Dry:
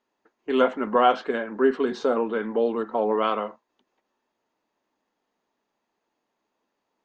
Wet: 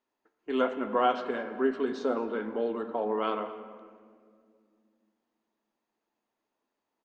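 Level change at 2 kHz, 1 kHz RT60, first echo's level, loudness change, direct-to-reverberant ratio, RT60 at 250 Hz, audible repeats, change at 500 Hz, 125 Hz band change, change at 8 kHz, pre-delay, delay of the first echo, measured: -6.5 dB, 1.7 s, -19.5 dB, -6.5 dB, 8.5 dB, 3.3 s, 1, -6.5 dB, no reading, no reading, 3 ms, 219 ms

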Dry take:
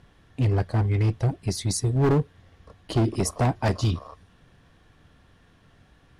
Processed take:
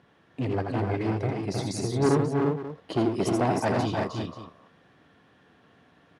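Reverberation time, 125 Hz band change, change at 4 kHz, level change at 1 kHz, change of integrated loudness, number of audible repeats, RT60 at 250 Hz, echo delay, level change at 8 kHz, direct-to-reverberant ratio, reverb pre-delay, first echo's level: no reverb, -6.5 dB, -3.0 dB, +2.5 dB, -2.5 dB, 4, no reverb, 82 ms, -7.0 dB, no reverb, no reverb, -5.5 dB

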